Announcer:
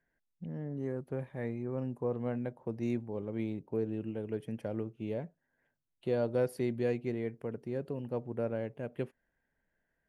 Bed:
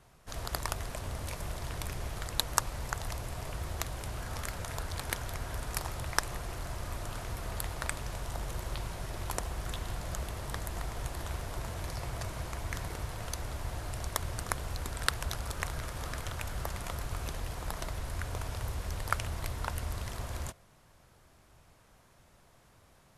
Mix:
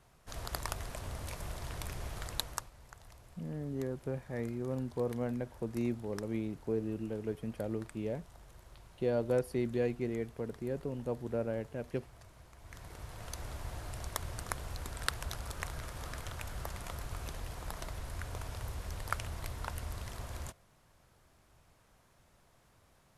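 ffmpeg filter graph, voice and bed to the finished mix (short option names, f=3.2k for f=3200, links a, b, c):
-filter_complex "[0:a]adelay=2950,volume=-0.5dB[a];[1:a]volume=10.5dB,afade=t=out:st=2.3:d=0.4:silence=0.177828,afade=t=in:st=12.57:d=0.89:silence=0.199526[b];[a][b]amix=inputs=2:normalize=0"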